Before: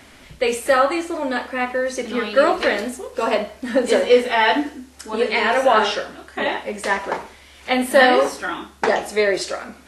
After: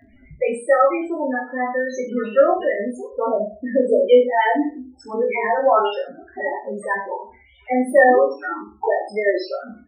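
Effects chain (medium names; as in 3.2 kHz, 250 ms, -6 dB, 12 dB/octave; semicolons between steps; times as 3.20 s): loudest bins only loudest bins 8; reverse bouncing-ball echo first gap 20 ms, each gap 1.1×, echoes 5; trim -1 dB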